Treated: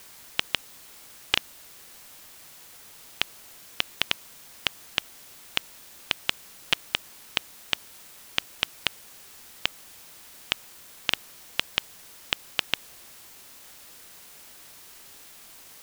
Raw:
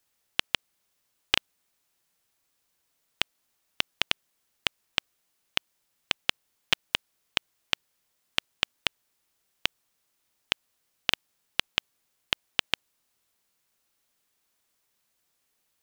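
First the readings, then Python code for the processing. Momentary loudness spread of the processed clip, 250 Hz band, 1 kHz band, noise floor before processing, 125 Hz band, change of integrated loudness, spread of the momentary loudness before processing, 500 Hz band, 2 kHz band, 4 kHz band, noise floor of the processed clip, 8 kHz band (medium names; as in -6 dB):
16 LU, +0.5 dB, +0.5 dB, -76 dBFS, +0.5 dB, +0.5 dB, 5 LU, +0.5 dB, +0.5 dB, +0.5 dB, -49 dBFS, +3.5 dB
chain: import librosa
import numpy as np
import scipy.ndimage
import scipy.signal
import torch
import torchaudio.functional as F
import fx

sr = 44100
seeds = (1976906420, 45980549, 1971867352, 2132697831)

p1 = fx.quant_dither(x, sr, seeds[0], bits=6, dither='triangular')
p2 = x + (p1 * 10.0 ** (-10.5 / 20.0))
y = p2 * 10.0 ** (-2.0 / 20.0)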